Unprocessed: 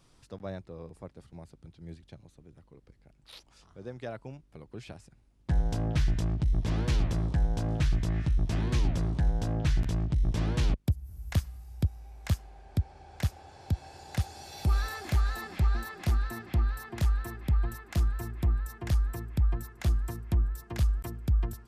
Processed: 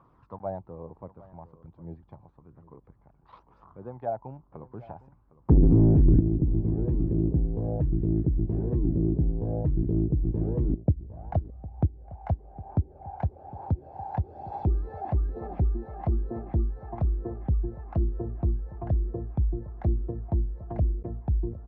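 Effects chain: 0.75–1.85 s: partial rectifier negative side -3 dB; high-pass 72 Hz 6 dB/octave; 5.50–6.20 s: waveshaping leveller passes 5; phaser 1.1 Hz, delay 1.4 ms, feedback 38%; echo from a far wall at 130 m, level -17 dB; touch-sensitive low-pass 330–1100 Hz down, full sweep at -22.5 dBFS

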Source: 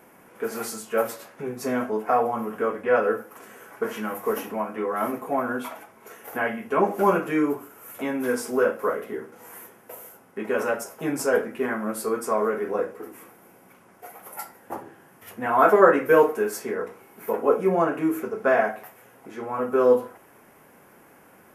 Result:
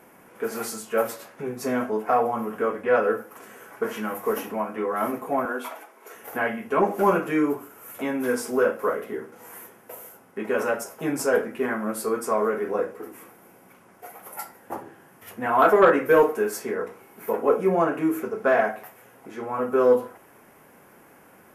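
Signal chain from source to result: 5.45–6.15 s: high-pass 290 Hz 24 dB/octave; in parallel at -10 dB: sine folder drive 6 dB, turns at -2 dBFS; on the sum: trim -5.5 dB

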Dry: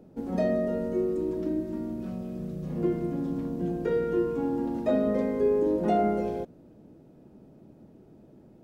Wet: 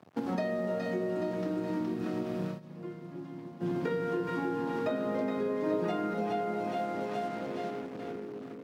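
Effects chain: high-order bell 2.1 kHz +8.5 dB 3 oct; two-band feedback delay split 580 Hz, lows 309 ms, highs 419 ms, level -3.5 dB; crossover distortion -49 dBFS; high-pass 100 Hz 24 dB/octave; bucket-brigade echo 581 ms, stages 2048, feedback 79%, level -22.5 dB; 2.46–3.74 s: dip -22.5 dB, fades 0.14 s; compression 6:1, threshold -38 dBFS, peak gain reduction 18.5 dB; 5.63–6.14 s: comb 6.5 ms, depth 74%; trim +7.5 dB

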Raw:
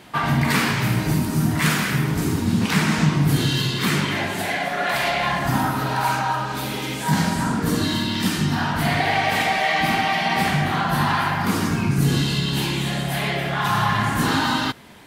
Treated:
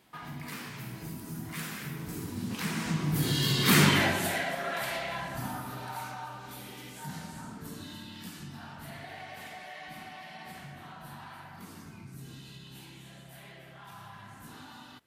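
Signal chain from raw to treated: Doppler pass-by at 3.86 s, 14 m/s, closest 2.9 m; treble shelf 9.4 kHz +9.5 dB; in parallel at +2 dB: compression, threshold -52 dBFS, peak gain reduction 30.5 dB

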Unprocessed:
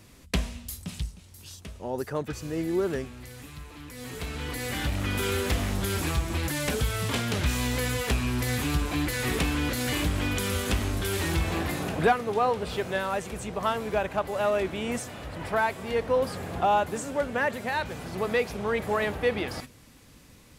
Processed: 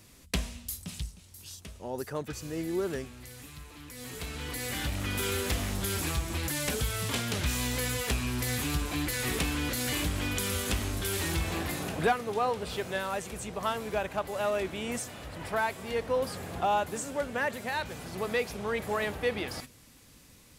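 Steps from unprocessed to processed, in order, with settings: treble shelf 3.6 kHz +6.5 dB; trim -4.5 dB

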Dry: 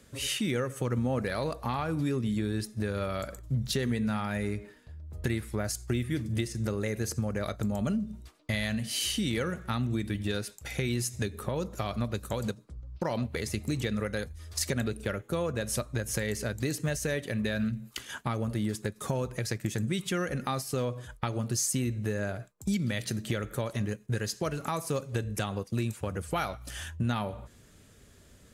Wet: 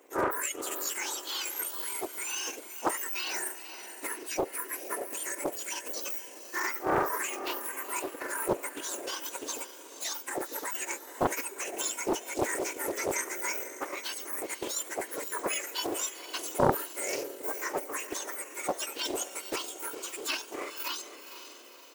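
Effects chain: spectrum inverted on a logarithmic axis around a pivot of 1.9 kHz; high-pass 550 Hz 6 dB/octave; in parallel at -9.5 dB: crossover distortion -54 dBFS; on the sum: echo that smears into a reverb 650 ms, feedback 48%, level -11 dB; tempo 1.3×; loudspeaker Doppler distortion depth 0.78 ms; trim +2.5 dB

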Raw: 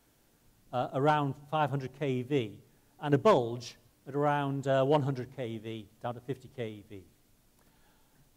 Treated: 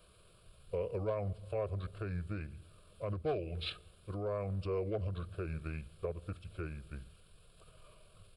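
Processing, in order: compression 3:1, threshold -38 dBFS, peak gain reduction 14.5 dB; peak limiter -31.5 dBFS, peak gain reduction 7 dB; pitch shift -6 st; static phaser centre 1.3 kHz, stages 8; trim +8 dB

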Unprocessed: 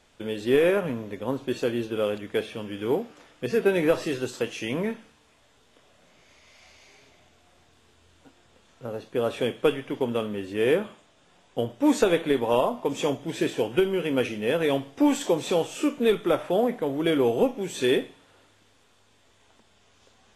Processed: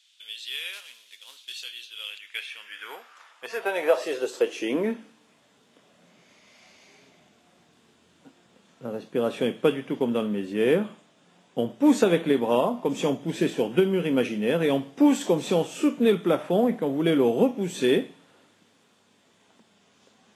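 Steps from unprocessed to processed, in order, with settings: 0.73–1.61 s: CVSD coder 64 kbps; high-pass sweep 3.4 kHz -> 180 Hz, 1.95–5.37 s; trim -1 dB

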